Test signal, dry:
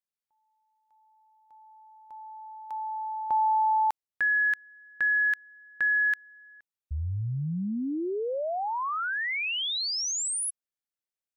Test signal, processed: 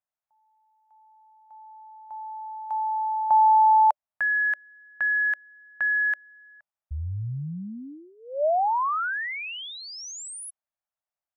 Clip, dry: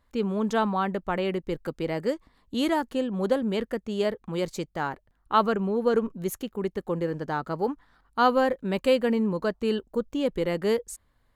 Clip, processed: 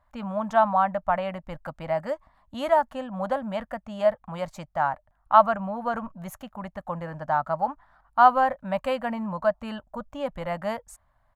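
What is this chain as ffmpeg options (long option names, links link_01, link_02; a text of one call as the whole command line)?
ffmpeg -i in.wav -af "firequalizer=gain_entry='entry(120,0);entry(290,-10);entry(410,-26);entry(600,9);entry(2200,-3);entry(4100,-10);entry(5800,-8)':delay=0.05:min_phase=1" out.wav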